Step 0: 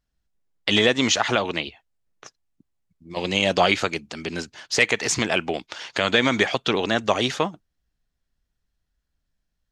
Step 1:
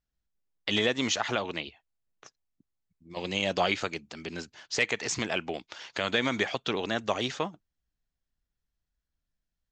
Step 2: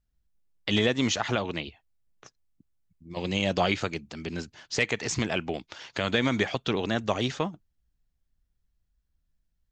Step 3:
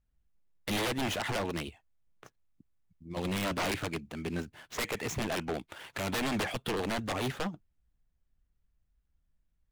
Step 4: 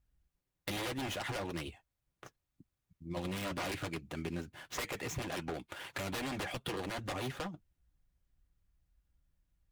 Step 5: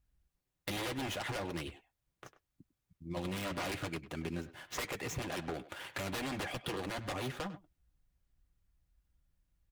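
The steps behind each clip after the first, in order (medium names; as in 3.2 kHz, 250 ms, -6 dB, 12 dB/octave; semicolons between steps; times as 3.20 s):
steep low-pass 8 kHz 72 dB/octave; trim -8 dB
bass shelf 220 Hz +11 dB
median filter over 9 samples; wavefolder -26 dBFS
compression, threshold -37 dBFS, peak gain reduction 8 dB; comb of notches 220 Hz; trim +2.5 dB
speakerphone echo 100 ms, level -14 dB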